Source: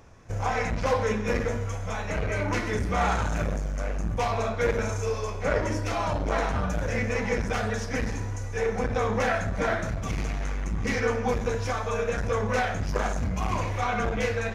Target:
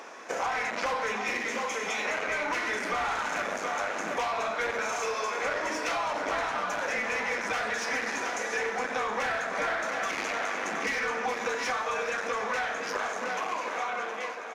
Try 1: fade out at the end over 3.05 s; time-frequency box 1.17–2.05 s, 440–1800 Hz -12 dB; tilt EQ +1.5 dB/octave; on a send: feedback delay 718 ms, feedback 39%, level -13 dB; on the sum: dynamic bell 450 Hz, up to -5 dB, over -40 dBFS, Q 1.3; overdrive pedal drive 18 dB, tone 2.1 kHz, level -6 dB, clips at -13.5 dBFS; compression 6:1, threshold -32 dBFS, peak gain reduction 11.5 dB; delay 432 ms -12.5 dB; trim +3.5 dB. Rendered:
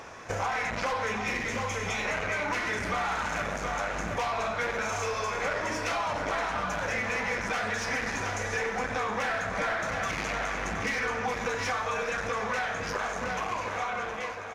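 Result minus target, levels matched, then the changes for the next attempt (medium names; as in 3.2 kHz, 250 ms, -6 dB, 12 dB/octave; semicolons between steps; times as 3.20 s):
250 Hz band +3.0 dB
add after dynamic bell: high-pass 240 Hz 24 dB/octave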